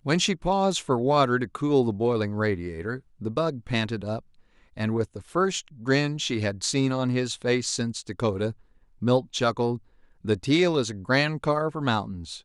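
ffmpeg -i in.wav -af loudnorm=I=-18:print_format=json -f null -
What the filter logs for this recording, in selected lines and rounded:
"input_i" : "-25.8",
"input_tp" : "-8.1",
"input_lra" : "3.3",
"input_thresh" : "-36.1",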